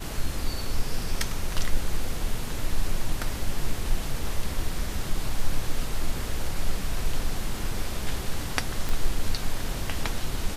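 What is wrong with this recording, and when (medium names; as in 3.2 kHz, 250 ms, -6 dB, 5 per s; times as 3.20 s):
8.89 s: pop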